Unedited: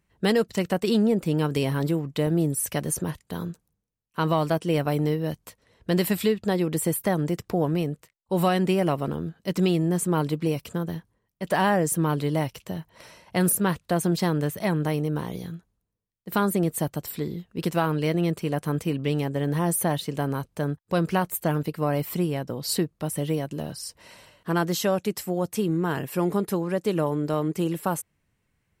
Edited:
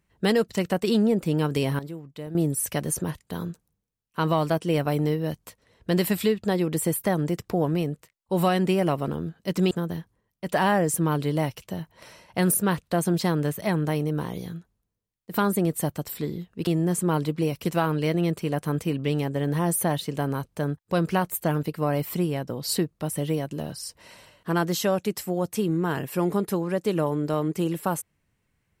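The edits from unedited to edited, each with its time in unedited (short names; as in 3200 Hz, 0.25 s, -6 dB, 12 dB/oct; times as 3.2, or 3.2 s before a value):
1.79–2.35 gain -12 dB
9.71–10.69 move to 17.65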